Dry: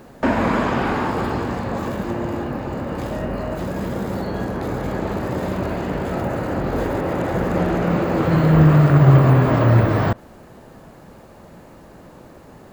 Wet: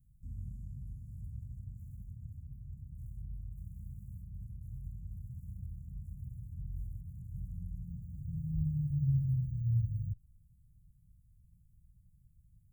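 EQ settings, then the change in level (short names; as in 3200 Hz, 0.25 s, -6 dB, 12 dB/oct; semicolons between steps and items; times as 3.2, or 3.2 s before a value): inverse Chebyshev band-stop 430–3200 Hz, stop band 60 dB; passive tone stack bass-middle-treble 10-0-1; -3.0 dB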